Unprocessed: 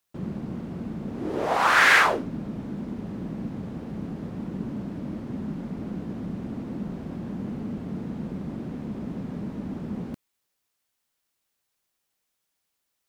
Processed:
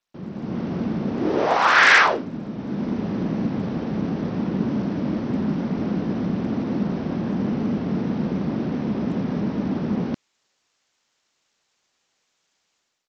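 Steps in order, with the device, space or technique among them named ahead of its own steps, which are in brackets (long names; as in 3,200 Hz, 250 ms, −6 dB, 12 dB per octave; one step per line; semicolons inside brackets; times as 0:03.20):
Bluetooth headset (high-pass filter 170 Hz 6 dB per octave; automatic gain control gain up to 12 dB; downsampling to 16,000 Hz; level −1 dB; SBC 64 kbit/s 32,000 Hz)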